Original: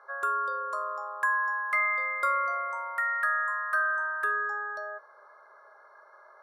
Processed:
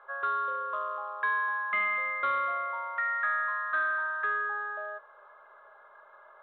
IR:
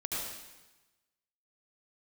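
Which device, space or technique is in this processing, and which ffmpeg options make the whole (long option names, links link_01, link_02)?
telephone: -af "highpass=340,lowpass=3500,asoftclip=type=tanh:threshold=-21dB" -ar 8000 -c:a pcm_mulaw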